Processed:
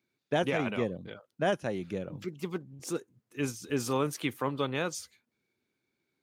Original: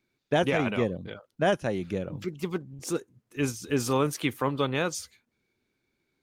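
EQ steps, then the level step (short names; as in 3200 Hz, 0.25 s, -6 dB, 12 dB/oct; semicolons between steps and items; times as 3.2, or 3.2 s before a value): HPF 100 Hz; -4.0 dB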